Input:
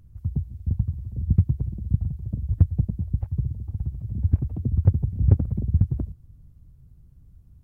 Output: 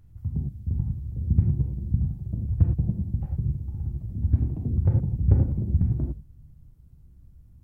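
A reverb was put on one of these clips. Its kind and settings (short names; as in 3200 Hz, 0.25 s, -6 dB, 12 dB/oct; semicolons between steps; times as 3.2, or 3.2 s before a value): non-linear reverb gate 0.13 s flat, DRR -0.5 dB; gain -3 dB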